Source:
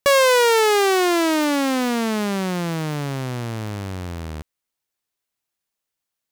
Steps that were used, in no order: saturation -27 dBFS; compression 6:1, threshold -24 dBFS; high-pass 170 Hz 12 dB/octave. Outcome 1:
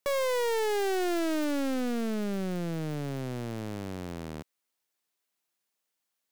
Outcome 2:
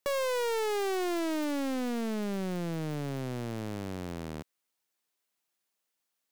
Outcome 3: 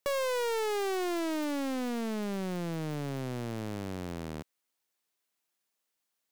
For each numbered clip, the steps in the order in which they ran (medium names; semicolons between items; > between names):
high-pass > saturation > compression; compression > high-pass > saturation; high-pass > compression > saturation